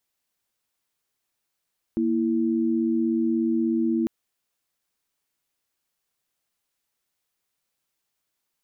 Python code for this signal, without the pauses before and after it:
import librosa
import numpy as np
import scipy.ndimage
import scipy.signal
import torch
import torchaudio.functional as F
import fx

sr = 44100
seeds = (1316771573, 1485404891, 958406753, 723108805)

y = fx.chord(sr, length_s=2.1, notes=(58, 64), wave='sine', level_db=-23.0)